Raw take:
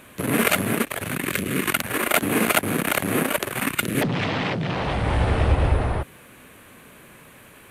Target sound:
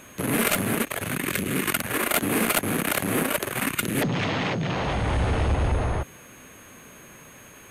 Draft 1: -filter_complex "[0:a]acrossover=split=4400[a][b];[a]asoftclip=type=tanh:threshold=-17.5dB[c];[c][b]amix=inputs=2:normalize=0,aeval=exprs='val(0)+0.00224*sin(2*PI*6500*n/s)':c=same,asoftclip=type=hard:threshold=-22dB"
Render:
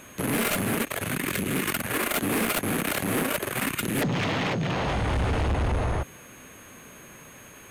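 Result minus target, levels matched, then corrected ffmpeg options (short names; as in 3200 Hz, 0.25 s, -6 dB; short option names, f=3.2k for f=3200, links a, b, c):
hard clip: distortion +20 dB
-filter_complex "[0:a]acrossover=split=4400[a][b];[a]asoftclip=type=tanh:threshold=-17.5dB[c];[c][b]amix=inputs=2:normalize=0,aeval=exprs='val(0)+0.00224*sin(2*PI*6500*n/s)':c=same,asoftclip=type=hard:threshold=-12dB"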